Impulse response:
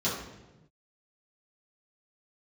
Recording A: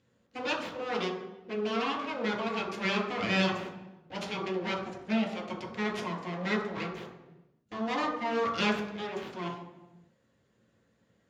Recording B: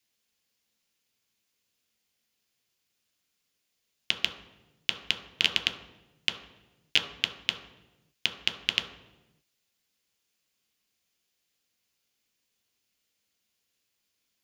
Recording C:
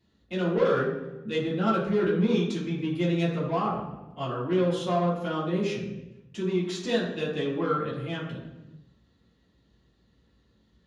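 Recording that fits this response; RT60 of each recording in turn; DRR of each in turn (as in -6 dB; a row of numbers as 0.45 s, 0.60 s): C; 1.0 s, 1.0 s, 1.0 s; -2.5 dB, 5.0 dB, -10.5 dB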